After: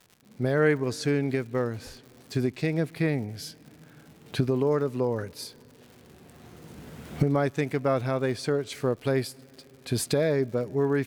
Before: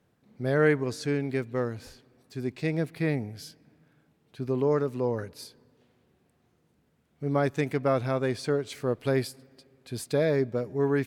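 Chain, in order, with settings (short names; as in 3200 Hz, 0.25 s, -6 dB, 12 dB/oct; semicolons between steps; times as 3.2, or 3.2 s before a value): recorder AGC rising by 14 dB/s; crackle 160/s -42 dBFS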